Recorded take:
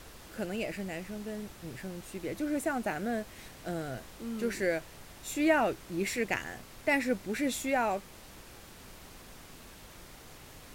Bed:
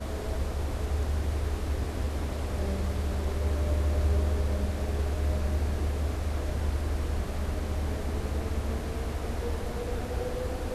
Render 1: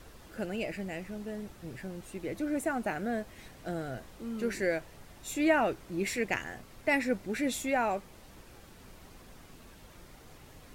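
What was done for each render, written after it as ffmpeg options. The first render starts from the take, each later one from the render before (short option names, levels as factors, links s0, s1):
-af "afftdn=nr=6:nf=-52"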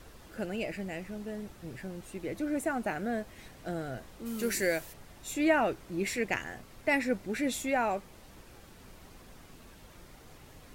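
-filter_complex "[0:a]asplit=3[s0][s1][s2];[s0]afade=t=out:st=4.25:d=0.02[s3];[s1]aemphasis=mode=production:type=75kf,afade=t=in:st=4.25:d=0.02,afade=t=out:st=4.92:d=0.02[s4];[s2]afade=t=in:st=4.92:d=0.02[s5];[s3][s4][s5]amix=inputs=3:normalize=0"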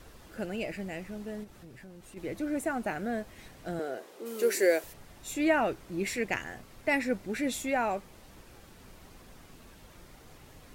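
-filter_complex "[0:a]asplit=3[s0][s1][s2];[s0]afade=t=out:st=1.43:d=0.02[s3];[s1]acompressor=threshold=0.00398:ratio=3:attack=3.2:release=140:knee=1:detection=peak,afade=t=in:st=1.43:d=0.02,afade=t=out:st=2.16:d=0.02[s4];[s2]afade=t=in:st=2.16:d=0.02[s5];[s3][s4][s5]amix=inputs=3:normalize=0,asettb=1/sr,asplit=3[s6][s7][s8];[s6]atrim=end=3.794[s9];[s7]atrim=start=3.79:end=4.84,asetpts=PTS-STARTPTS,afade=t=in:d=0.004:c=qsin,afade=t=out:st=1.046:d=0.004:c=qsin,highpass=f=410:t=q:w=2.7[s10];[s8]atrim=start=4.836[s11];[s9][s10]acrossfade=d=0.004:c1=hsin:c2=qsin[s12];[s12][s11]acrossfade=d=0.004:c1=qsin:c2=hsin"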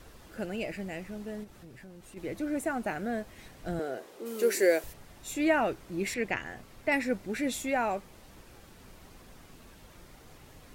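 -filter_complex "[0:a]asettb=1/sr,asplit=3[s0][s1][s2];[s0]atrim=end=3.634[s3];[s1]atrim=start=3.63:end=4.92,asetpts=PTS-STARTPTS,afade=t=in:d=0.004:c=qsin,afade=t=out:st=1.286:d=0.004:c=qsin,lowshelf=f=100:g=12[s4];[s2]atrim=start=4.916[s5];[s3][s4]acrossfade=d=0.004:c1=hsin:c2=qsin[s6];[s6][s5]acrossfade=d=0.004:c1=qsin:c2=hsin,asettb=1/sr,asplit=3[s7][s8][s9];[s7]atrim=end=6.144[s10];[s8]atrim=start=6.14:end=6.92,asetpts=PTS-STARTPTS,afade=t=in:d=0.004:c=qsin,afade=t=out:st=0.776:d=0.004:c=qsin,acrossover=split=4500[s11][s12];[s12]acompressor=threshold=0.00112:ratio=4:attack=1:release=60[s13];[s11][s13]amix=inputs=2:normalize=0[s14];[s9]atrim=start=6.916[s15];[s10][s14]acrossfade=d=0.004:c1=hsin:c2=qsin[s16];[s16][s15]acrossfade=d=0.004:c1=qsin:c2=hsin"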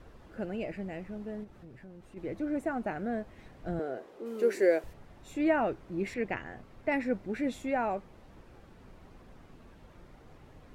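-af "lowpass=f=1300:p=1"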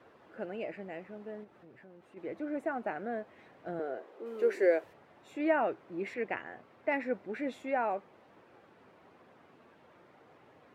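-af "highpass=f=95:w=0.5412,highpass=f=95:w=1.3066,bass=f=250:g=-13,treble=f=4000:g=-11"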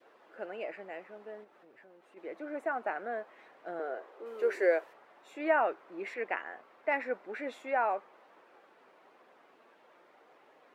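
-af "adynamicequalizer=threshold=0.00501:dfrequency=1200:dqfactor=1.1:tfrequency=1200:tqfactor=1.1:attack=5:release=100:ratio=0.375:range=2.5:mode=boostabove:tftype=bell,highpass=400"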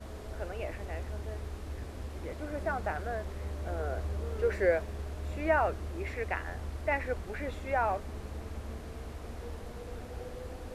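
-filter_complex "[1:a]volume=0.316[s0];[0:a][s0]amix=inputs=2:normalize=0"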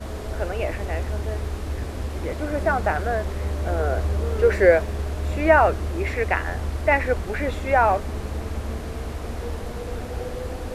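-af "volume=3.76"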